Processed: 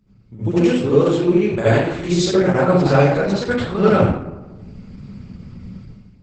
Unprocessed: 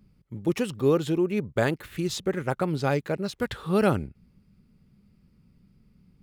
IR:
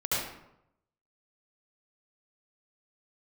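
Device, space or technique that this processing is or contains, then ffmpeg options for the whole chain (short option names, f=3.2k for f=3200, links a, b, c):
speakerphone in a meeting room: -filter_complex "[1:a]atrim=start_sample=2205[a];[0:a][a]afir=irnorm=-1:irlink=0,dynaudnorm=f=120:g=7:m=16dB,volume=-1dB" -ar 48000 -c:a libopus -b:a 12k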